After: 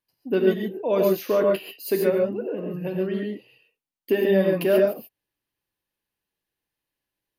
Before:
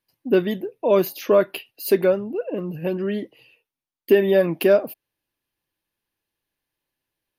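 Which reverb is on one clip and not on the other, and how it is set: non-linear reverb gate 0.16 s rising, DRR 0.5 dB; gain -5.5 dB

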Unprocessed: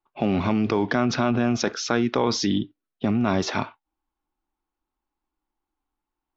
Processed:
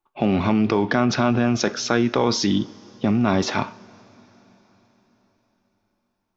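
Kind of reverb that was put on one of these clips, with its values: two-slope reverb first 0.4 s, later 4.6 s, from -18 dB, DRR 14 dB; gain +2.5 dB

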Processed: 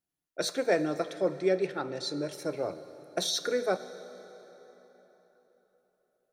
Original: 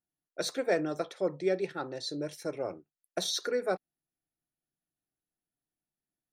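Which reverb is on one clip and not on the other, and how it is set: plate-style reverb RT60 4.1 s, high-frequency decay 0.7×, DRR 12.5 dB; gain +2 dB

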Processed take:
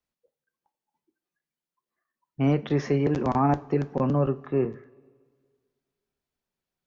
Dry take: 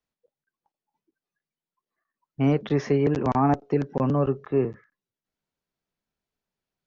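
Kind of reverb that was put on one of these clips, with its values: two-slope reverb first 0.26 s, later 1.8 s, from -18 dB, DRR 11.5 dB; gain -1 dB

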